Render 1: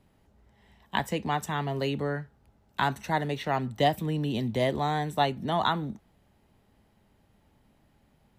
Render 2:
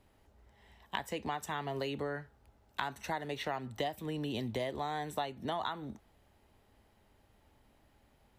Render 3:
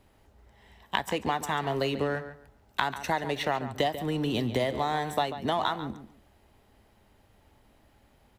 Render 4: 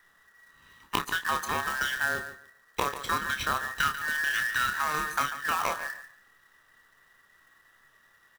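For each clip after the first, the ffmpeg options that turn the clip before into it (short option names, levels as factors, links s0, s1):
-af "equalizer=f=170:w=1.3:g=-9,acompressor=threshold=0.0224:ratio=6"
-filter_complex "[0:a]asplit=2[s0][s1];[s1]aeval=exprs='sgn(val(0))*max(abs(val(0))-0.00531,0)':c=same,volume=0.562[s2];[s0][s2]amix=inputs=2:normalize=0,asplit=2[s3][s4];[s4]adelay=141,lowpass=f=3600:p=1,volume=0.266,asplit=2[s5][s6];[s6]adelay=141,lowpass=f=3600:p=1,volume=0.21,asplit=2[s7][s8];[s8]adelay=141,lowpass=f=3600:p=1,volume=0.21[s9];[s3][s5][s7][s9]amix=inputs=4:normalize=0,volume=1.78"
-filter_complex "[0:a]afftfilt=real='real(if(between(b,1,1012),(2*floor((b-1)/92)+1)*92-b,b),0)':imag='imag(if(between(b,1,1012),(2*floor((b-1)/92)+1)*92-b,b),0)*if(between(b,1,1012),-1,1)':win_size=2048:overlap=0.75,acrusher=bits=2:mode=log:mix=0:aa=0.000001,asplit=2[s0][s1];[s1]adelay=29,volume=0.398[s2];[s0][s2]amix=inputs=2:normalize=0,volume=0.841"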